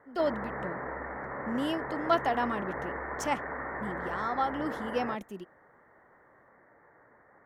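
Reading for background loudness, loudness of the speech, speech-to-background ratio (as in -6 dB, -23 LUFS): -37.5 LUFS, -33.0 LUFS, 4.5 dB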